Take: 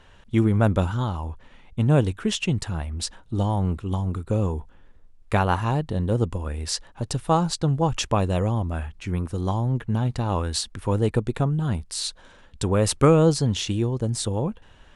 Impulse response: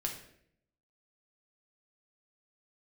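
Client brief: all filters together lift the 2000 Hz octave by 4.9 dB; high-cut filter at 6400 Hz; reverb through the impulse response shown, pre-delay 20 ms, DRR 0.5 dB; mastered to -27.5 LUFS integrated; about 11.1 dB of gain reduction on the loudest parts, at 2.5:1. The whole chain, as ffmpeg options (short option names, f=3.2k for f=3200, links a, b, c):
-filter_complex "[0:a]lowpass=6.4k,equalizer=f=2k:t=o:g=7,acompressor=threshold=-28dB:ratio=2.5,asplit=2[a][b];[1:a]atrim=start_sample=2205,adelay=20[c];[b][c]afir=irnorm=-1:irlink=0,volume=-2dB[d];[a][d]amix=inputs=2:normalize=0,volume=-0.5dB"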